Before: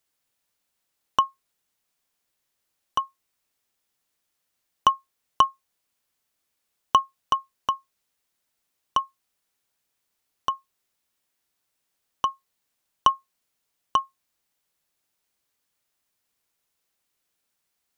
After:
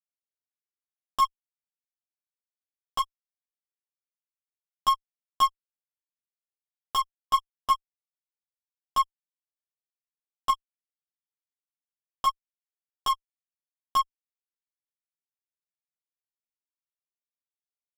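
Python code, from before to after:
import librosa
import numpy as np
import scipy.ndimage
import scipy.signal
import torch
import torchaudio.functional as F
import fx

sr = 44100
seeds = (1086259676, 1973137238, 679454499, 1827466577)

y = fx.fuzz(x, sr, gain_db=30.0, gate_db=-36.0)
y = fx.dereverb_blind(y, sr, rt60_s=0.55)
y = fx.ensemble(y, sr)
y = y * librosa.db_to_amplitude(-4.5)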